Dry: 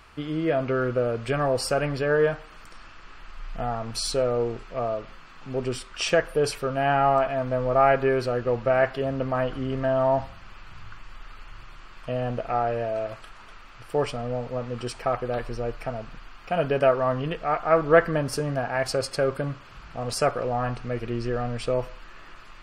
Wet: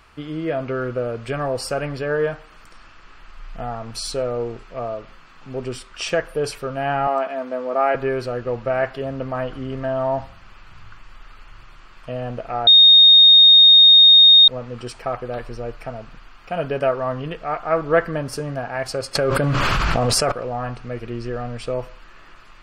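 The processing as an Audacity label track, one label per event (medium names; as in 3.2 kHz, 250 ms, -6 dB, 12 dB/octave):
7.070000	7.950000	steep high-pass 190 Hz 48 dB/octave
12.670000	14.480000	bleep 3.7 kHz -6 dBFS
19.150000	20.320000	level flattener amount 100%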